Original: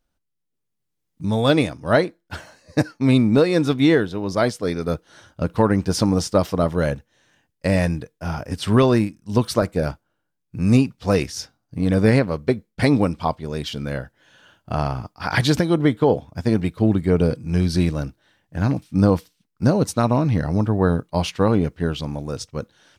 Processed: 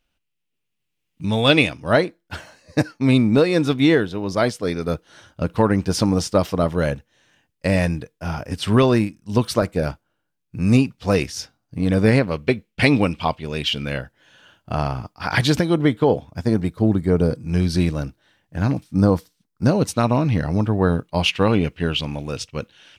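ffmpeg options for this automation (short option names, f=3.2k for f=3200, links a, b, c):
-af "asetnsamples=n=441:p=0,asendcmd='1.82 equalizer g 3.5;12.31 equalizer g 13.5;14.01 equalizer g 3;16.43 equalizer g -6;17.41 equalizer g 2;18.84 equalizer g -5;19.66 equalizer g 6.5;21.26 equalizer g 14.5',equalizer=f=2.7k:t=o:w=0.78:g=14"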